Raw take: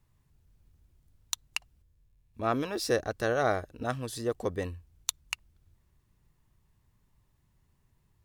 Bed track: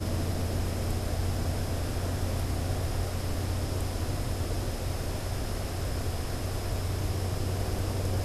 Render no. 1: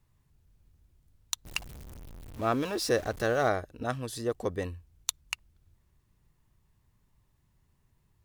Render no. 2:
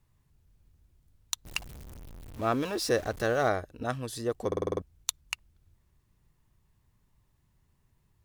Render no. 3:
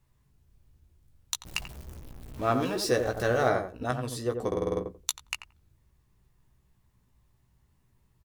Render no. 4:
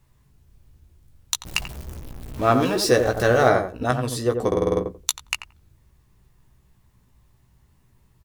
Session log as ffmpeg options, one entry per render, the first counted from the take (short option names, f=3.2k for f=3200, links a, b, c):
-filter_complex "[0:a]asettb=1/sr,asplit=3[a][b][c];[a]atrim=end=1.454[d];[b]atrim=start=1.45:end=3.49,asetpts=PTS-STARTPTS,afade=t=in:d=0.004:c=qsin,afade=t=out:st=2.036:d=0.004:c=qsin,aeval=exprs='val(0)+0.5*0.01*sgn(val(0))':c=same[e];[c]atrim=start=3.486[f];[d][e]acrossfade=d=0.004:c1=hsin:c2=qsin[g];[g][f]acrossfade=d=0.004:c1=qsin:c2=hsin"
-filter_complex "[0:a]asplit=8[a][b][c][d][e][f][g][h];[a]atrim=end=4.522[i];[b]atrim=start=4.468:end=4.522[j];[c]atrim=start=4.468:end=4.522[k];[d]atrim=start=4.468:end=4.522[l];[e]atrim=start=4.468:end=4.522[m];[f]atrim=start=4.468:end=4.522[n];[g]atrim=start=4.468:end=4.522[o];[h]atrim=start=4.818[p];[i][j]acrossfade=d=0.004:c1=hsin:c2=hsin[q];[q][k]acrossfade=d=0.004:c1=hsin:c2=hsin[r];[r][l]acrossfade=d=0.004:c1=hsin:c2=hsin[s];[s][m]acrossfade=d=0.004:c1=hsin:c2=hsin[t];[t][n]acrossfade=d=0.004:c1=hsin:c2=hsin[u];[u][o]acrossfade=d=0.004:c1=hsin:c2=hsin[v];[v][p]acrossfade=d=0.004:c1=hsin:c2=hsin"
-filter_complex "[0:a]asplit=2[a][b];[b]adelay=16,volume=-6dB[c];[a][c]amix=inputs=2:normalize=0,asplit=2[d][e];[e]adelay=88,lowpass=f=970:p=1,volume=-5dB,asplit=2[f][g];[g]adelay=88,lowpass=f=970:p=1,volume=0.17,asplit=2[h][i];[i]adelay=88,lowpass=f=970:p=1,volume=0.17[j];[f][h][j]amix=inputs=3:normalize=0[k];[d][k]amix=inputs=2:normalize=0"
-af "volume=8dB,alimiter=limit=-3dB:level=0:latency=1"